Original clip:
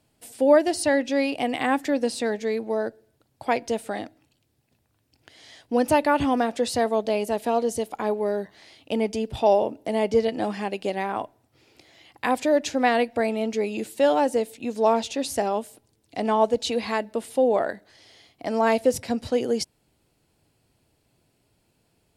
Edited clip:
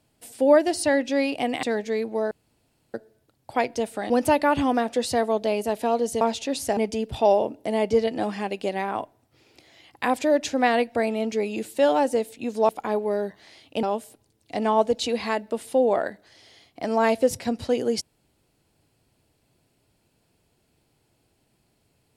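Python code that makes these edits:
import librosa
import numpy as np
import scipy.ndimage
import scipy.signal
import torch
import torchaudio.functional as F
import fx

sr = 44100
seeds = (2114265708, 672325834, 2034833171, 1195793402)

y = fx.edit(x, sr, fx.cut(start_s=1.63, length_s=0.55),
    fx.insert_room_tone(at_s=2.86, length_s=0.63),
    fx.cut(start_s=4.02, length_s=1.71),
    fx.swap(start_s=7.84, length_s=1.14, other_s=14.9, other_length_s=0.56), tone=tone)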